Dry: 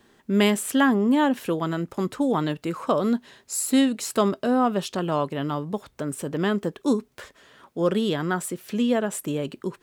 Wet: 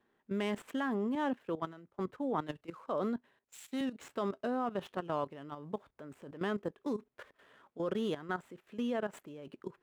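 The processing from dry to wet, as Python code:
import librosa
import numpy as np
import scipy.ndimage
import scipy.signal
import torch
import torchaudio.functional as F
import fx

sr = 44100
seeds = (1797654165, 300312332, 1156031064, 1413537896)

y = scipy.ndimage.median_filter(x, 9, mode='constant')
y = fx.low_shelf(y, sr, hz=260.0, db=-8.0)
y = fx.level_steps(y, sr, step_db=14)
y = fx.high_shelf(y, sr, hz=4400.0, db=-9.0)
y = fx.band_widen(y, sr, depth_pct=100, at=(1.15, 3.81))
y = y * 10.0 ** (-5.0 / 20.0)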